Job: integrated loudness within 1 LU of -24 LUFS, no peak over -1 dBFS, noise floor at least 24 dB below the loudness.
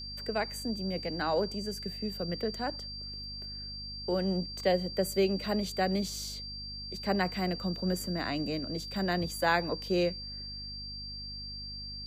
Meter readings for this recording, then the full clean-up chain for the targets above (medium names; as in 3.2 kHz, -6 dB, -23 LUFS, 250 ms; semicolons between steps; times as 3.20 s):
hum 50 Hz; highest harmonic 250 Hz; hum level -44 dBFS; steady tone 4.7 kHz; tone level -40 dBFS; loudness -33.0 LUFS; peak level -14.5 dBFS; loudness target -24.0 LUFS
-> de-hum 50 Hz, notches 5; band-stop 4.7 kHz, Q 30; trim +9 dB